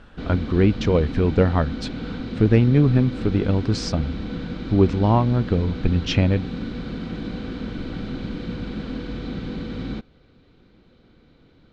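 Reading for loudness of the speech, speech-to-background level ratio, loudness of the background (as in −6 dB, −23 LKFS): −21.0 LKFS, 10.0 dB, −31.0 LKFS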